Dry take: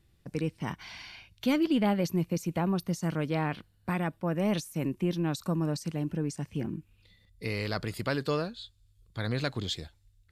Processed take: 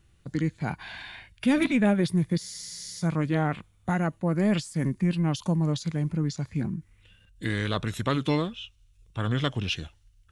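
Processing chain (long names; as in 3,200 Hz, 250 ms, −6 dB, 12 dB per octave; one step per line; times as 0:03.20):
formants moved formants −4 semitones
frozen spectrum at 0:02.42, 0.59 s
level +4.5 dB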